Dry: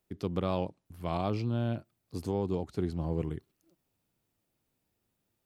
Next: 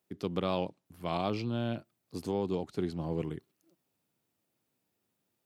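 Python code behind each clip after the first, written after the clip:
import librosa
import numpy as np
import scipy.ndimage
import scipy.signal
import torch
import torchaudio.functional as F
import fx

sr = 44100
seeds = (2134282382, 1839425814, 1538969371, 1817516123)

y = scipy.signal.sosfilt(scipy.signal.butter(2, 140.0, 'highpass', fs=sr, output='sos'), x)
y = fx.dynamic_eq(y, sr, hz=3300.0, q=0.92, threshold_db=-54.0, ratio=4.0, max_db=5)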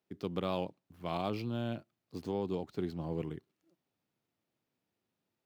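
y = scipy.ndimage.median_filter(x, 5, mode='constant')
y = y * 10.0 ** (-3.0 / 20.0)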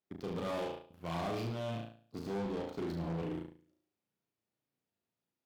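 y = fx.room_flutter(x, sr, wall_m=6.1, rt60_s=0.65)
y = 10.0 ** (-32.0 / 20.0) * np.tanh(y / 10.0 ** (-32.0 / 20.0))
y = fx.cheby_harmonics(y, sr, harmonics=(7,), levels_db=(-21,), full_scale_db=-32.0)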